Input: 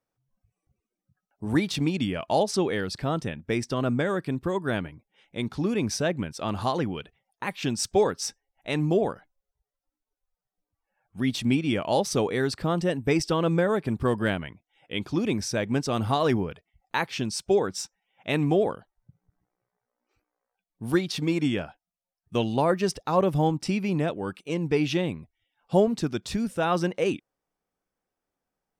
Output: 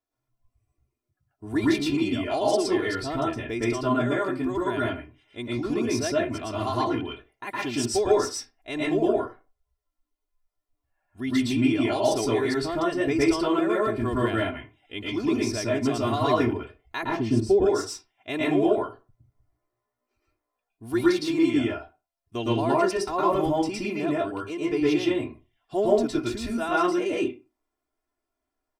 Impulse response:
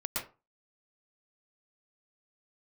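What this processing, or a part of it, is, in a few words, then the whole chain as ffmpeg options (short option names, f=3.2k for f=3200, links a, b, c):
microphone above a desk: -filter_complex "[0:a]aecho=1:1:2.9:0.9[a];[1:a]atrim=start_sample=2205[b];[a][b]afir=irnorm=-1:irlink=0,asettb=1/sr,asplit=3[c][d][e];[c]atrim=end=17.034[f];[d]atrim=start=17.03:end=17.66,asetpts=PTS-STARTPTS,afade=t=in:d=0.004:c=qsin,afade=t=out:st=0.626:d=0.004:c=qsin,tiltshelf=f=720:g=9.5[g];[e]atrim=start=17.656[h];[f][g]acrossfade=d=0.004:c1=hsin:c2=qsin[i];[i][h]acrossfade=d=0.004:c1=qsin:c2=hsin,volume=-5dB"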